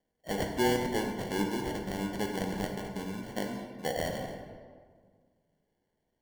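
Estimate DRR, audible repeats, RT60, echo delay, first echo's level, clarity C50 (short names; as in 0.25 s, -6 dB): 2.5 dB, none, 1.8 s, none, none, 4.0 dB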